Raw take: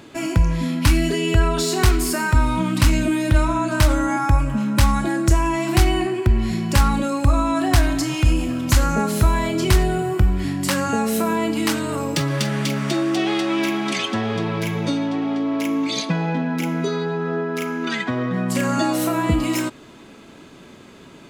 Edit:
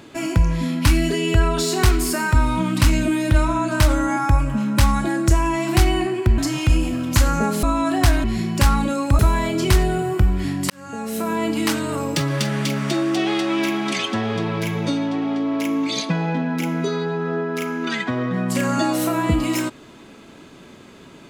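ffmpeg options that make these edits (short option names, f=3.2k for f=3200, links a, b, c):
-filter_complex "[0:a]asplit=6[a][b][c][d][e][f];[a]atrim=end=6.382[g];[b]atrim=start=7.938:end=9.192[h];[c]atrim=start=7.328:end=7.942[i];[d]atrim=start=6.378:end=7.332[j];[e]atrim=start=9.188:end=10.7,asetpts=PTS-STARTPTS,afade=t=out:st=1.508:d=0.004:c=hsin[k];[f]atrim=start=10.7,asetpts=PTS-STARTPTS,afade=t=in:d=0.79[l];[g][h]acrossfade=d=0.004:c1=hsin:c2=hsin[m];[m][i]acrossfade=d=0.004:c1=hsin:c2=hsin[n];[n][j]acrossfade=d=0.004:c1=hsin:c2=hsin[o];[k][l]concat=n=2:v=0:a=1[p];[o][p]acrossfade=d=0.004:c1=hsin:c2=hsin"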